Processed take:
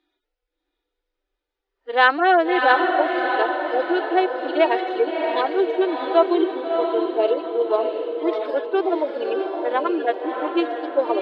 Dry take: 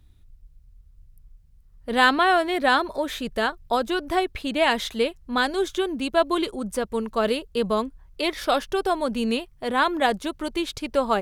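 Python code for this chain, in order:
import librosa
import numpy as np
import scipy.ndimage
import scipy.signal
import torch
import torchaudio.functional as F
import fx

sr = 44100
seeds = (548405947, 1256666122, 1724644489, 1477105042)

y = fx.hpss_only(x, sr, part='harmonic')
y = scipy.signal.sosfilt(scipy.signal.ellip(4, 1.0, 40, 320.0, 'highpass', fs=sr, output='sos'), y)
y = fx.air_absorb(y, sr, metres=240.0)
y = fx.notch(y, sr, hz=1100.0, q=8.6)
y = fx.echo_diffused(y, sr, ms=645, feedback_pct=48, wet_db=-4.0)
y = F.gain(torch.from_numpy(y), 5.5).numpy()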